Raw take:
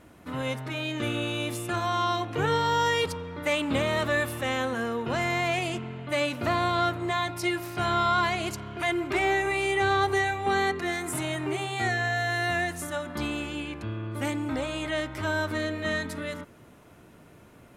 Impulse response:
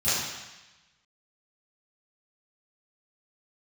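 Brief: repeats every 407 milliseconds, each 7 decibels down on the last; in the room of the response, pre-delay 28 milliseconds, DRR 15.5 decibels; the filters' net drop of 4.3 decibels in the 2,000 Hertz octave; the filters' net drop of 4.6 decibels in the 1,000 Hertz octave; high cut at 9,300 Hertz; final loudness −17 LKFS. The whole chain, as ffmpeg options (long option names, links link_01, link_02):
-filter_complex "[0:a]lowpass=9300,equalizer=frequency=1000:width_type=o:gain=-5.5,equalizer=frequency=2000:width_type=o:gain=-3.5,aecho=1:1:407|814|1221|1628|2035:0.447|0.201|0.0905|0.0407|0.0183,asplit=2[link_01][link_02];[1:a]atrim=start_sample=2205,adelay=28[link_03];[link_02][link_03]afir=irnorm=-1:irlink=0,volume=-29dB[link_04];[link_01][link_04]amix=inputs=2:normalize=0,volume=12.5dB"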